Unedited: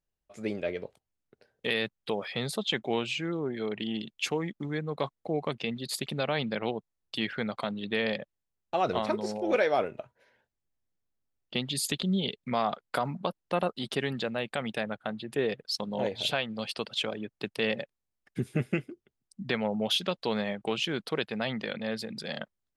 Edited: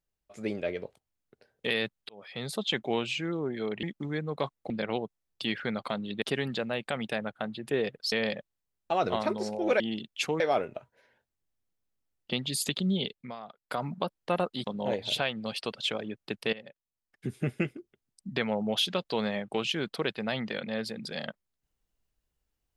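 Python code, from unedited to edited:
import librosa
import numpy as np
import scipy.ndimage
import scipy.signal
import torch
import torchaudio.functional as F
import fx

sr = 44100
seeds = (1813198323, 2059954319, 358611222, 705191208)

y = fx.edit(x, sr, fx.fade_in_span(start_s=2.09, length_s=0.53),
    fx.move(start_s=3.83, length_s=0.6, to_s=9.63),
    fx.cut(start_s=5.3, length_s=1.13),
    fx.fade_down_up(start_s=12.24, length_s=0.89, db=-15.5, fade_s=0.35),
    fx.move(start_s=13.87, length_s=1.9, to_s=7.95),
    fx.fade_in_from(start_s=17.66, length_s=1.12, floor_db=-19.0), tone=tone)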